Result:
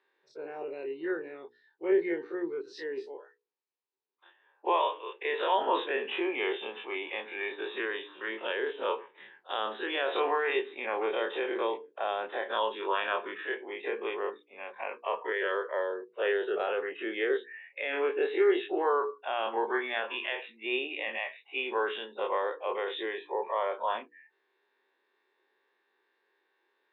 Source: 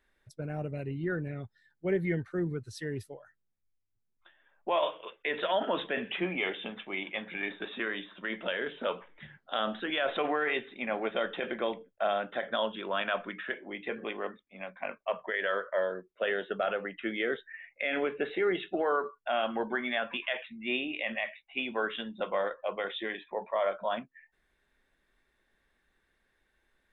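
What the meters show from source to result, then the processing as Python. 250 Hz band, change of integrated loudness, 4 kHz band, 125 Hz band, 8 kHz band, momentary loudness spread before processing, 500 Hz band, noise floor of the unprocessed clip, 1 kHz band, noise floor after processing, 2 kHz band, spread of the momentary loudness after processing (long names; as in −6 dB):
−1.5 dB, +1.0 dB, −0.5 dB, below −25 dB, can't be measured, 8 LU, +2.0 dB, −77 dBFS, +3.0 dB, −76 dBFS, −0.5 dB, 10 LU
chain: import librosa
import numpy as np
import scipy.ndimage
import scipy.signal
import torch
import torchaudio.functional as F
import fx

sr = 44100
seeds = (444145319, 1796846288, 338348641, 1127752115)

y = fx.spec_dilate(x, sr, span_ms=60)
y = fx.cabinet(y, sr, low_hz=380.0, low_slope=24, high_hz=4200.0, hz=(390.0, 640.0, 940.0, 1400.0, 2100.0, 3300.0), db=(7, -10, 5, -7, -6, -5))
y = fx.hum_notches(y, sr, base_hz=60, count=8)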